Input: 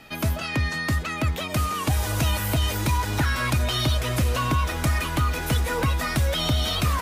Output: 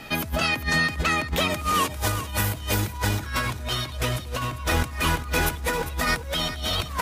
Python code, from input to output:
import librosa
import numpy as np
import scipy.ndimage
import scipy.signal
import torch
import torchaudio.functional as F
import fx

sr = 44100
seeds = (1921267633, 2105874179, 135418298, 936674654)

y = fx.over_compress(x, sr, threshold_db=-28.0, ratio=-0.5)
y = y + 10.0 ** (-12.0 / 20.0) * np.pad(y, (int(399 * sr / 1000.0), 0))[:len(y)]
y = F.gain(torch.from_numpy(y), 2.5).numpy()